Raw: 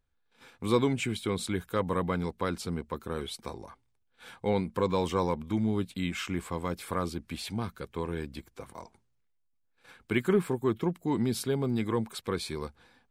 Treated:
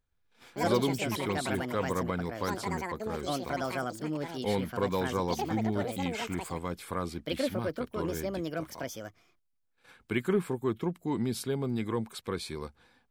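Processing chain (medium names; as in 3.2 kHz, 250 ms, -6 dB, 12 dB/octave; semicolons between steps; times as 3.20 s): ever faster or slower copies 124 ms, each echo +6 st, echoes 2; trim -2.5 dB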